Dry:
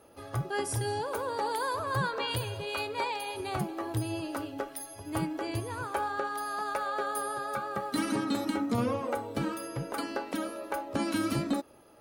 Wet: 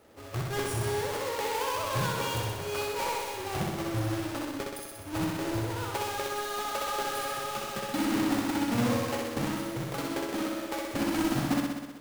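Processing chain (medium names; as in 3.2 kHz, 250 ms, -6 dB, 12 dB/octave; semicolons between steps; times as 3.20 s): square wave that keeps the level; flutter echo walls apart 10.8 m, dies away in 1.2 s; trim -6 dB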